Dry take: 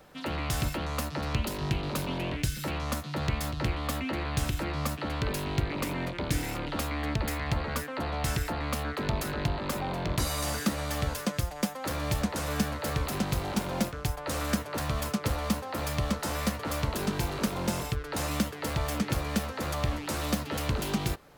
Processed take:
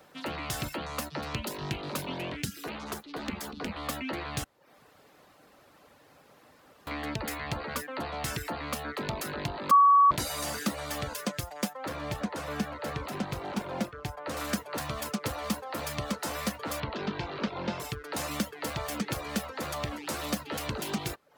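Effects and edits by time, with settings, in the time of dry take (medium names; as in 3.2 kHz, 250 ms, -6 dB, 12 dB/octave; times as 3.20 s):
2.45–3.76 s: ring modulator 140 Hz
4.44–6.87 s: room tone
9.71–10.11 s: bleep 1.13 kHz -14 dBFS
11.73–14.37 s: treble shelf 4.6 kHz -11.5 dB
16.80–17.80 s: low-pass 4.3 kHz 24 dB/octave
whole clip: high-pass 210 Hz 6 dB/octave; reverb removal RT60 0.5 s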